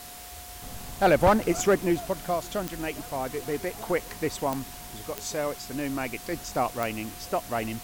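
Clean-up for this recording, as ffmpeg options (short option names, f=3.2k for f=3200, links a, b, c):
-af "adeclick=t=4,bandreject=f=720:w=30,afftdn=nr=30:nf=-42"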